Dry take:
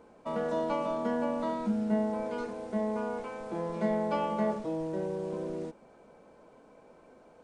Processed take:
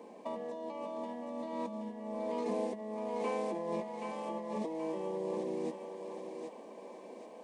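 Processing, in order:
Chebyshev high-pass filter 200 Hz, order 4
compressor whose output falls as the input rises −39 dBFS, ratio −1
Butterworth band-reject 1,400 Hz, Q 2.7
feedback echo with a high-pass in the loop 776 ms, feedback 49%, high-pass 520 Hz, level −4 dB

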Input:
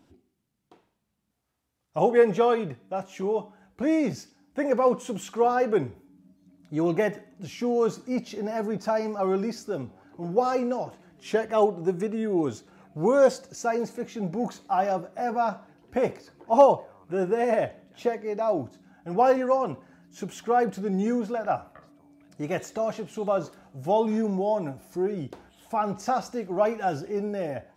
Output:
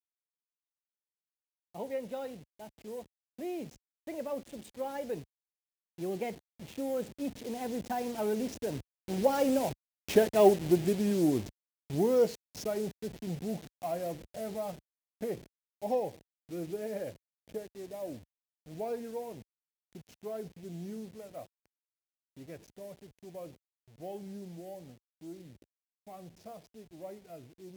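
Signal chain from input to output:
hold until the input has moved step −34 dBFS
source passing by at 0:10.16, 38 m/s, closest 29 metres
high-pass filter 52 Hz
parametric band 1,200 Hz −11 dB 1 octave
in parallel at −1 dB: downward compressor, threshold −40 dBFS, peak gain reduction 20 dB
on the sum: level +1.5 dB

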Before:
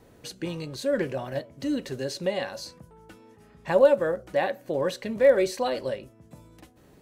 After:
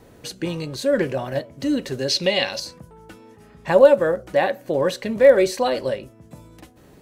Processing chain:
0:02.08–0:02.60: flat-topped bell 3,500 Hz +10.5 dB
level +6 dB

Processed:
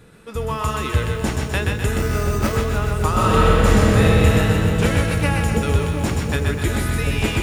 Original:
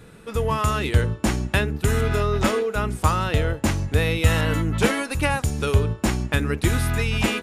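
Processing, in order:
echo with a time of its own for lows and highs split 690 Hz, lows 724 ms, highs 126 ms, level −3.5 dB
0:01.98–0:02.57: bad sample-rate conversion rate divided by 6×, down filtered, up hold
0:03.10–0:04.02: thrown reverb, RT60 2.8 s, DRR −5.5 dB
feedback echo at a low word length 145 ms, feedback 80%, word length 7 bits, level −11 dB
level −2 dB

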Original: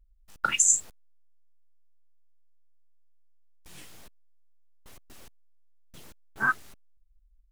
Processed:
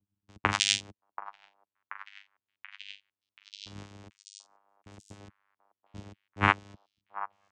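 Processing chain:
channel vocoder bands 4, saw 100 Hz
echo through a band-pass that steps 732 ms, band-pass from 910 Hz, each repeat 0.7 octaves, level −9.5 dB
level −1 dB

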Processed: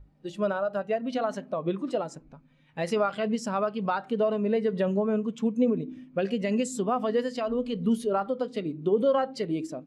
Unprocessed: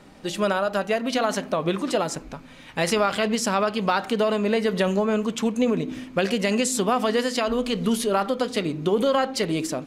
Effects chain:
hum with harmonics 50 Hz, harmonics 3, −36 dBFS −9 dB per octave
mains-hum notches 50/100 Hz
every bin expanded away from the loudest bin 1.5 to 1
level −4 dB

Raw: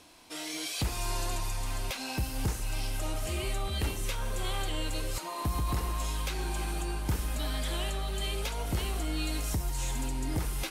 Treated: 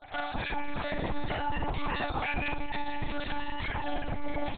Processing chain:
time-frequency cells dropped at random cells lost 38%
parametric band 340 Hz +10 dB 0.88 octaves
brickwall limiter −31 dBFS, peak gain reduction 14.5 dB
repeating echo 113 ms, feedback 22%, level −3.5 dB
wrong playback speed 33 rpm record played at 78 rpm
one-pitch LPC vocoder at 8 kHz 290 Hz
level +7 dB

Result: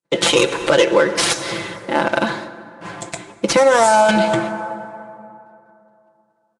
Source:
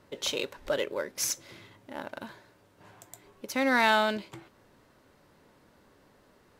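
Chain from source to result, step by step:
stylus tracing distortion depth 0.25 ms
0:03.56–0:04.09: graphic EQ with 10 bands 250 Hz −10 dB, 2,000 Hz −11 dB, 4,000 Hz −10 dB
noise gate −55 dBFS, range −58 dB
comb filter 5.9 ms, depth 82%
dense smooth reverb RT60 2.7 s, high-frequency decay 0.5×, DRR 12.5 dB
downward compressor 6 to 1, threshold −30 dBFS, peak gain reduction 11 dB
high-pass filter 100 Hz 12 dB per octave
boost into a limiter +22.5 dB
level −1 dB
Nellymoser 44 kbit/s 22,050 Hz

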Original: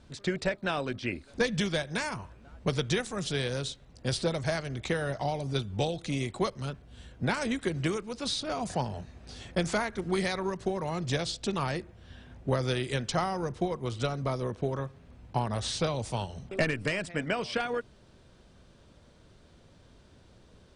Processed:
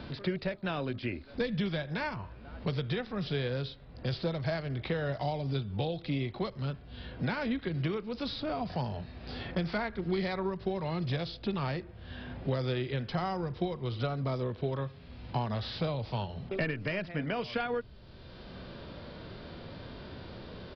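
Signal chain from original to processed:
harmonic and percussive parts rebalanced percussive −8 dB
downsampling to 11,025 Hz
multiband upward and downward compressor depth 70%

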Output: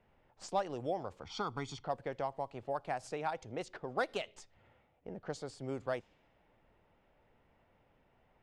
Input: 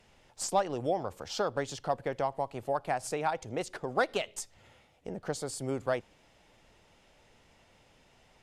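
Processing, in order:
0:01.23–0:01.84: comb filter 0.9 ms, depth 85%
low-pass that shuts in the quiet parts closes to 1,700 Hz, open at −25.5 dBFS
level −6 dB

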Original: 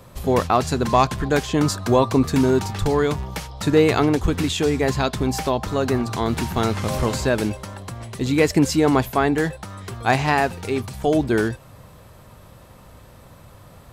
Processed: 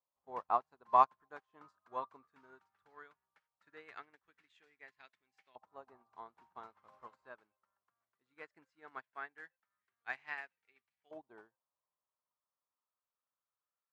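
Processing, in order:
auto-filter band-pass saw up 0.18 Hz 880–2,200 Hz
expander for the loud parts 2.5 to 1, over −42 dBFS
level −4.5 dB

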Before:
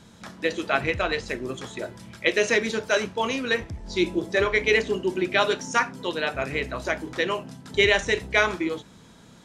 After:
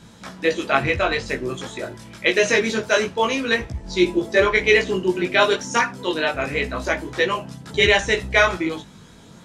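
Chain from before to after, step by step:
multi-voice chorus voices 2, 0.26 Hz, delay 18 ms, depth 4.4 ms
level +7.5 dB

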